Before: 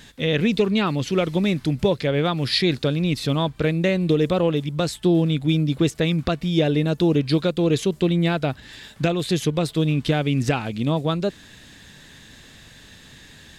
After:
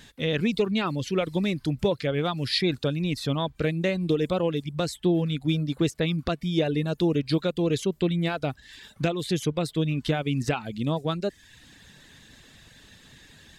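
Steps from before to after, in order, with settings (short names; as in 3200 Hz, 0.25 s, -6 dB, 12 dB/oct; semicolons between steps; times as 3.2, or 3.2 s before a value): reverb removal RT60 0.61 s; gain -4 dB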